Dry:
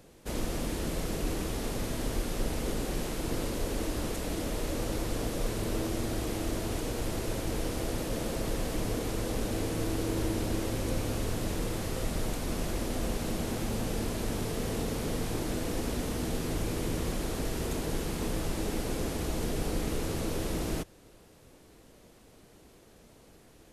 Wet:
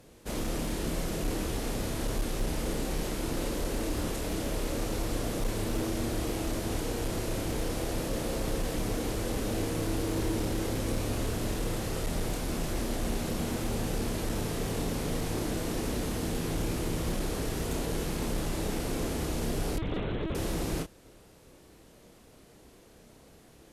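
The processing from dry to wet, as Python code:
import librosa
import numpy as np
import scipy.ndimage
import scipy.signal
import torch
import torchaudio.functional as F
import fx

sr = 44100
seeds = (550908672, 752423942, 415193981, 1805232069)

y = fx.doubler(x, sr, ms=30.0, db=-5.5)
y = fx.lpc_vocoder(y, sr, seeds[0], excitation='pitch_kept', order=10, at=(19.78, 20.35))
y = fx.clip_asym(y, sr, top_db=-25.5, bottom_db=-22.0)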